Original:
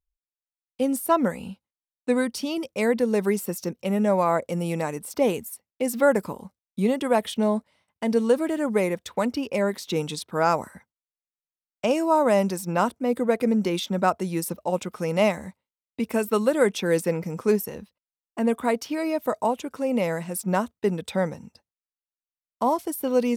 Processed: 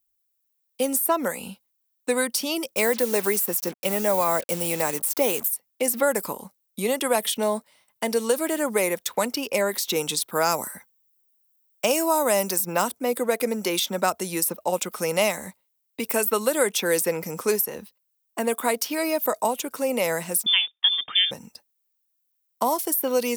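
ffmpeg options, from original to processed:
-filter_complex "[0:a]asettb=1/sr,asplit=3[s0][s1][s2];[s0]atrim=end=2.764[s3];[s1]atrim=start=2.76:end=5.48,asetpts=PTS-STARTPTS,afade=t=in:d=0.004:c=qsin,afade=t=out:st=2.716:d=0.004:c=qsin,acrusher=bits=6:mix=0:aa=0.5[s4];[s2]atrim=start=5.476[s5];[s3][s4]acrossfade=d=0.004:c1=hsin:c2=qsin[s6];[s6][s5]acrossfade=d=0.004:c1=qsin:c2=hsin,asettb=1/sr,asplit=3[s7][s8][s9];[s7]atrim=end=10.224[s10];[s8]atrim=start=10.22:end=12.82,asetpts=PTS-STARTPTS,afade=t=in:d=0.004:c=qsin,afade=t=out:st=2.596:d=0.004:c=qsin,highshelf=f=10000:g=7.5[s11];[s9]atrim=start=12.816[s12];[s10][s11]acrossfade=d=0.004:c1=hsin:c2=qsin[s13];[s13][s12]acrossfade=d=0.004:c1=qsin:c2=hsin,asettb=1/sr,asplit=3[s14][s15][s16];[s14]atrim=end=20.464[s17];[s15]atrim=start=20.46:end=21.31,asetpts=PTS-STARTPTS,afade=t=in:d=0.004:c=qsin,afade=t=out:st=0.846:d=0.004:c=qsin,lowpass=f=3100:t=q:w=0.5098,lowpass=f=3100:t=q:w=0.6013,lowpass=f=3100:t=q:w=0.9,lowpass=f=3100:t=q:w=2.563,afreqshift=-3700[s18];[s16]atrim=start=21.306[s19];[s17][s18]acrossfade=d=0.004:c1=hsin:c2=qsin[s20];[s20][s19]acrossfade=d=0.004:c1=qsin:c2=hsin,aemphasis=mode=production:type=bsi,acrossover=split=350|2600[s21][s22][s23];[s21]acompressor=threshold=0.0141:ratio=4[s24];[s22]acompressor=threshold=0.0631:ratio=4[s25];[s23]acompressor=threshold=0.0447:ratio=4[s26];[s24][s25][s26]amix=inputs=3:normalize=0,volume=1.58"

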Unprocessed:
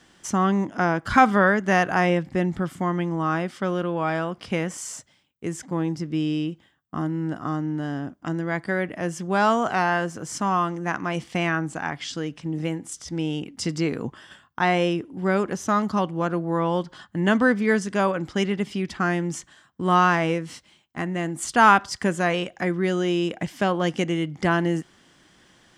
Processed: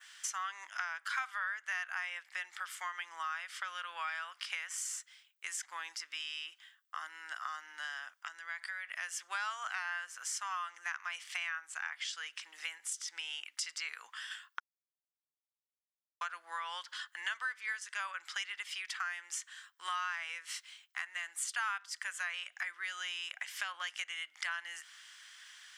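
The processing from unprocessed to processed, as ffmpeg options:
-filter_complex "[0:a]asettb=1/sr,asplit=3[s0][s1][s2];[s0]atrim=end=8.114[s3];[s1]atrim=start=8.11:end=8.96,asetpts=PTS-STARTPTS,afade=t=in:d=0.004:c=qsin,afade=t=out:st=0.846:d=0.004:c=qsin,acompressor=threshold=0.0282:ratio=6:attack=3.2:release=140:knee=1:detection=peak[s4];[s2]atrim=start=8.956[s5];[s3][s4]acrossfade=d=0.004:c1=hsin:c2=qsin[s6];[s6][s5]acrossfade=d=0.004:c1=qsin:c2=hsin,asplit=3[s7][s8][s9];[s7]atrim=end=14.6,asetpts=PTS-STARTPTS,afade=t=out:st=14.596:d=0.004:c=hsin[s10];[s8]atrim=start=14.6:end=16.21,asetpts=PTS-STARTPTS,volume=0[s11];[s9]atrim=start=16.21,asetpts=PTS-STARTPTS,afade=t=in:d=0.004:c=hsin[s12];[s10][s11][s12]concat=n=3:v=0:a=1,highpass=f=1400:w=0.5412,highpass=f=1400:w=1.3066,adynamicequalizer=threshold=0.00447:dfrequency=4800:dqfactor=1:tfrequency=4800:tqfactor=1:attack=5:release=100:ratio=0.375:range=2.5:mode=cutabove:tftype=bell,acompressor=threshold=0.00794:ratio=4,volume=1.68"

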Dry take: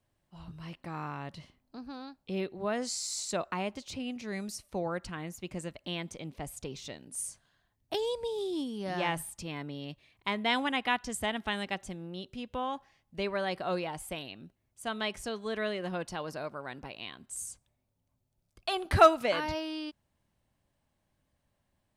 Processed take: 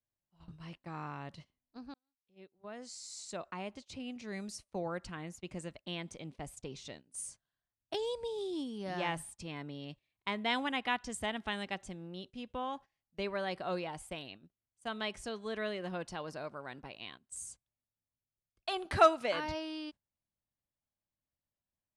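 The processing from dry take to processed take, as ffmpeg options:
-filter_complex "[0:a]asettb=1/sr,asplit=3[s0][s1][s2];[s0]atrim=end=18.874[s3];[s1]atrim=start=18.87:end=19.35,asetpts=PTS-STARTPTS,afade=t=in:d=0.004:c=qsin,afade=t=out:st=0.476:d=0.004:c=qsin,lowshelf=f=130:g=-10[s4];[s2]atrim=start=19.346[s5];[s3][s4]acrossfade=d=0.004:c1=hsin:c2=qsin[s6];[s6][s5]acrossfade=d=0.004:c1=qsin:c2=hsin,asplit=2[s7][s8];[s7]atrim=end=1.94,asetpts=PTS-STARTPTS,afade=t=out:st=1.936:d=0.004:c=hsin[s9];[s8]atrim=start=1.94,asetpts=PTS-STARTPTS,afade=t=in:d=2.55[s10];[s9][s10]concat=n=2:v=0:a=1,lowpass=f=10000:w=0.5412,lowpass=f=10000:w=1.3066,agate=range=0.158:threshold=0.00501:ratio=16:detection=peak,volume=0.631"

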